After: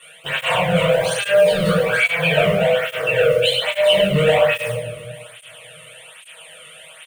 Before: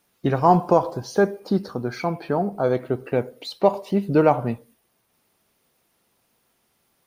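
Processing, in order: high-pass 51 Hz 24 dB/octave; hum notches 60/120/180/240/300/360/420/480/540/600 Hz; comb 6.3 ms, depth 43%; overdrive pedal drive 34 dB, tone 1.8 kHz, clips at -2.5 dBFS; FFT filter 160 Hz 0 dB, 250 Hz -29 dB, 380 Hz -25 dB, 540 Hz +2 dB, 810 Hz -16 dB, 3.1 kHz +7 dB, 5.2 kHz -23 dB, 8.8 kHz +7 dB, 13 kHz -18 dB; in parallel at -7.5 dB: word length cut 6-bit, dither none; on the sum: treble shelf 9.6 kHz +9 dB; reverse; compression 5:1, threshold -22 dBFS, peak gain reduction 14.5 dB; reverse; feedback delay 323 ms, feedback 49%, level -20 dB; simulated room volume 250 m³, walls mixed, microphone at 3.5 m; cancelling through-zero flanger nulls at 1.2 Hz, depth 1.3 ms

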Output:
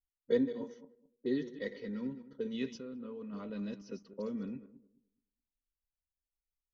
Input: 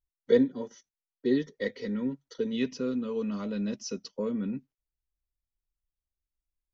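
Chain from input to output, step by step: backward echo that repeats 106 ms, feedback 47%, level -12 dB; 2.77–3.33 s: level held to a coarse grid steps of 12 dB; level-controlled noise filter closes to 400 Hz, open at -26.5 dBFS; trim -7.5 dB; AAC 96 kbps 48 kHz

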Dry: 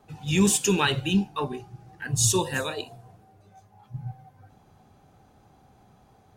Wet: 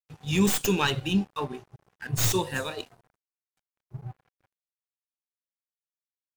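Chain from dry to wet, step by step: tracing distortion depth 0.097 ms; crossover distortion -45 dBFS; trim -1.5 dB

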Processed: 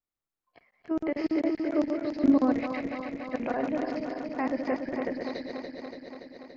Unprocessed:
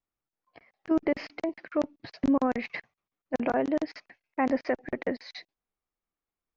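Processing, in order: backward echo that repeats 143 ms, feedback 84%, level -5 dB; 1.24–2.54 s: peaking EQ 310 Hz +8.5 dB 1.1 oct; trim -4.5 dB

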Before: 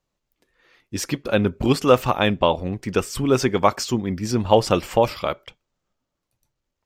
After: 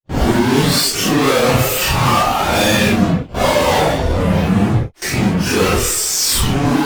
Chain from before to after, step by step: fuzz box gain 37 dB, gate -41 dBFS; Paulstretch 4×, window 0.05 s, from 1.57 s; gate with hold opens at -18 dBFS; trim +1 dB

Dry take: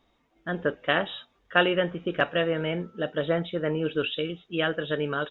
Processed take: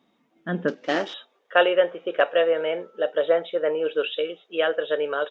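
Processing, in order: 0.68–1.14 s: CVSD coder 32 kbps; high-pass sweep 200 Hz -> 520 Hz, 0.63–1.47 s

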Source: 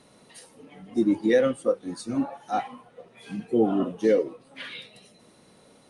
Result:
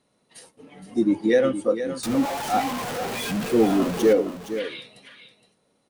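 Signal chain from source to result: 2.03–4.13 s: jump at every zero crossing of -26.5 dBFS; gate -51 dBFS, range -14 dB; delay 466 ms -10.5 dB; trim +1.5 dB

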